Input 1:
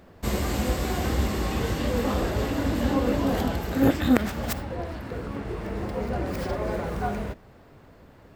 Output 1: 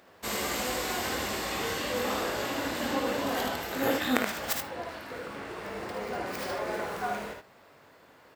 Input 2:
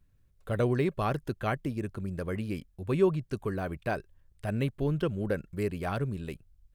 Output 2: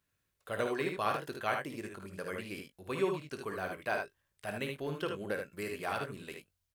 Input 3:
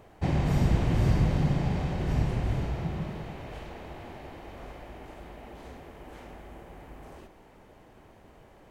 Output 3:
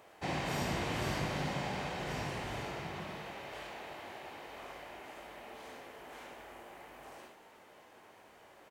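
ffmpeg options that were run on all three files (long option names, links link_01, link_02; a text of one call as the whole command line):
ffmpeg -i in.wav -filter_complex "[0:a]highpass=frequency=960:poles=1,asplit=2[link_01][link_02];[link_02]adelay=20,volume=-12.5dB[link_03];[link_01][link_03]amix=inputs=2:normalize=0,aecho=1:1:54|76:0.376|0.531,volume=1dB" out.wav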